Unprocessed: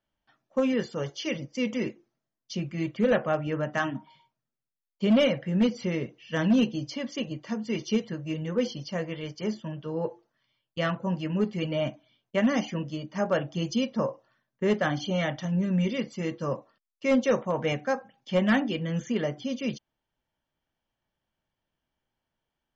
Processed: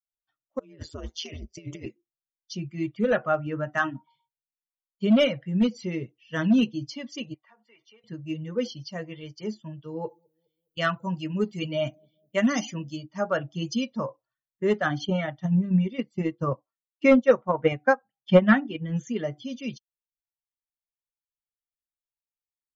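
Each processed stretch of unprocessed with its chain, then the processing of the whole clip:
0:00.59–0:01.86: compressor whose output falls as the input rises −31 dBFS, ratio −0.5 + ring modulation 81 Hz
0:07.34–0:08.04: three-way crossover with the lows and the highs turned down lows −21 dB, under 600 Hz, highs −20 dB, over 2,600 Hz + downward compressor 3 to 1, threshold −45 dBFS
0:09.84–0:13.01: high-shelf EQ 5,800 Hz +12 dB + bucket-brigade delay 206 ms, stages 1,024, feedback 56%, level −23 dB
0:15.05–0:18.97: high-shelf EQ 4,500 Hz −11.5 dB + transient designer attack +9 dB, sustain −5 dB
whole clip: spectral dynamics exaggerated over time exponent 1.5; dynamic equaliser 1,400 Hz, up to +6 dB, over −52 dBFS, Q 3.6; level +3.5 dB

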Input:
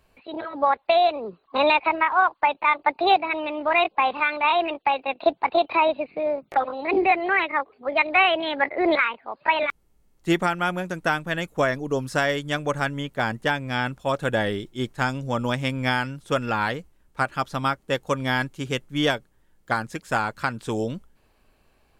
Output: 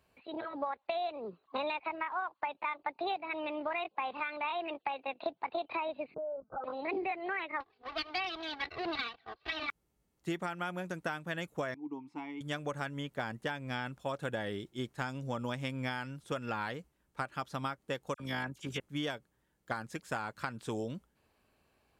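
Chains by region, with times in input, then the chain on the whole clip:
0:06.14–0:06.64: downward compressor, threshold −27 dBFS + linear-phase brick-wall low-pass 1,600 Hz + linear-prediction vocoder at 8 kHz pitch kept
0:07.60–0:09.69: lower of the sound and its delayed copy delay 2.6 ms + high shelf with overshoot 6,000 Hz −13.5 dB, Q 3 + flanger 1.4 Hz, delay 0.7 ms, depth 1.3 ms, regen −63%
0:11.74–0:12.41: formant filter u + dynamic equaliser 1,000 Hz, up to +5 dB, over −54 dBFS, Q 0.92
0:18.14–0:18.80: all-pass dispersion lows, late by 55 ms, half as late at 2,500 Hz + amplitude modulation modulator 53 Hz, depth 25%
whole clip: high-pass filter 66 Hz; downward compressor, threshold −25 dBFS; level −7.5 dB

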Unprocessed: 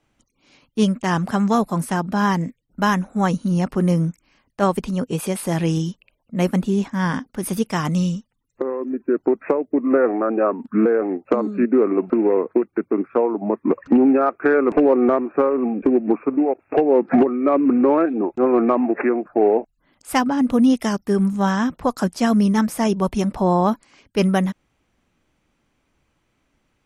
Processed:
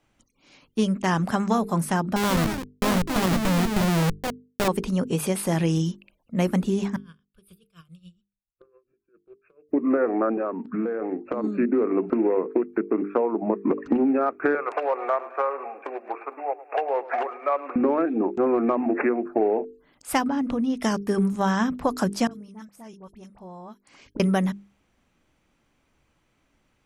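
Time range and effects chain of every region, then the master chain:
0:02.16–0:04.68: comb filter 5.2 ms, depth 32% + comparator with hysteresis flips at −19.5 dBFS + delay with pitch and tempo change per echo 142 ms, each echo +4 semitones, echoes 2, each echo −6 dB
0:06.96–0:09.69: guitar amp tone stack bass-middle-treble 6-0-2 + phaser with its sweep stopped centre 1,300 Hz, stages 8 + tremolo with a sine in dB 7.2 Hz, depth 19 dB
0:10.33–0:11.44: low-pass filter 5,600 Hz + downward compressor, threshold −23 dBFS
0:14.55–0:17.76: high-pass filter 630 Hz 24 dB per octave + repeating echo 107 ms, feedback 53%, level −17.5 dB
0:20.28–0:20.83: downward compressor 5 to 1, threshold −21 dBFS + high-frequency loss of the air 69 metres
0:22.27–0:24.20: all-pass dispersion highs, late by 44 ms, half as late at 1,700 Hz + gate with flip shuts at −23 dBFS, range −24 dB
whole clip: mains-hum notches 50/100/150/200/250/300/350/400/450 Hz; downward compressor, threshold −18 dBFS

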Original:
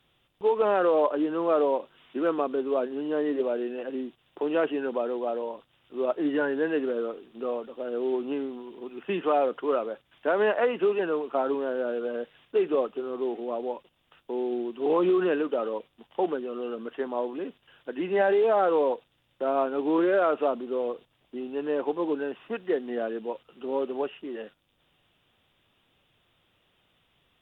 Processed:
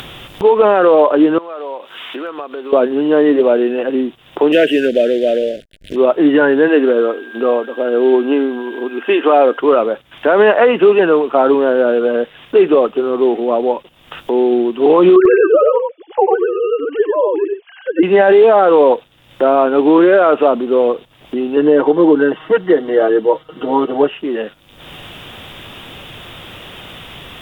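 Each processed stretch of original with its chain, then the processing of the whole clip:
0:01.38–0:02.73: high-pass filter 1,100 Hz 6 dB per octave + downward compressor 2 to 1, threshold −55 dBFS
0:04.52–0:05.96: parametric band 3,500 Hz +8.5 dB 1.9 octaves + slack as between gear wheels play −46 dBFS + elliptic band-stop filter 630–1,600 Hz, stop band 50 dB
0:06.67–0:09.58: steady tone 1,600 Hz −51 dBFS + linear-phase brick-wall high-pass 220 Hz
0:15.16–0:18.03: three sine waves on the formant tracks + single-tap delay 94 ms −3.5 dB
0:21.56–0:24.10: high-shelf EQ 3,500 Hz −7.5 dB + notch filter 2,500 Hz, Q 6.3 + comb filter 6.4 ms, depth 96%
whole clip: upward compression, threshold −34 dBFS; boost into a limiter +17.5 dB; level −1 dB

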